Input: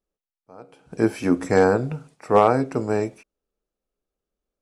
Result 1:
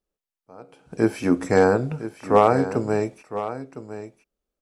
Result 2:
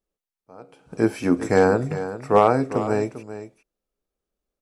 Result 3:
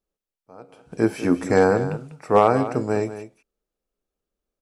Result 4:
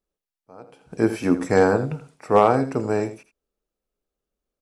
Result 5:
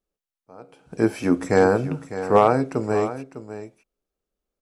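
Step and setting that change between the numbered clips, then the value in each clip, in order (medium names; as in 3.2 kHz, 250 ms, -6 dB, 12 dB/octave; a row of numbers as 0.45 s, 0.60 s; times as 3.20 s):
delay, time: 1009 ms, 398 ms, 196 ms, 82 ms, 603 ms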